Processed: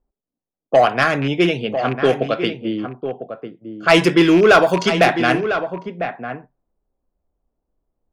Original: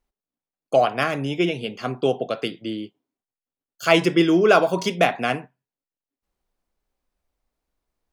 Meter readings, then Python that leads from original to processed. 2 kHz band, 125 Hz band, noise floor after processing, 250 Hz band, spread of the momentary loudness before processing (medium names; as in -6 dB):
+7.0 dB, +5.5 dB, under -85 dBFS, +5.5 dB, 13 LU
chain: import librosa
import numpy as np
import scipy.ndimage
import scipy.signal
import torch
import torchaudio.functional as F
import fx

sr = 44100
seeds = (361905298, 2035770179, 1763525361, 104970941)

y = fx.rattle_buzz(x, sr, strikes_db=-26.0, level_db=-23.0)
y = fx.dynamic_eq(y, sr, hz=1600.0, q=2.5, threshold_db=-38.0, ratio=4.0, max_db=5)
y = 10.0 ** (-10.0 / 20.0) * np.tanh(y / 10.0 ** (-10.0 / 20.0))
y = y + 10.0 ** (-9.5 / 20.0) * np.pad(y, (int(1000 * sr / 1000.0), 0))[:len(y)]
y = fx.env_lowpass(y, sr, base_hz=670.0, full_db=-16.5)
y = F.gain(torch.from_numpy(y), 6.0).numpy()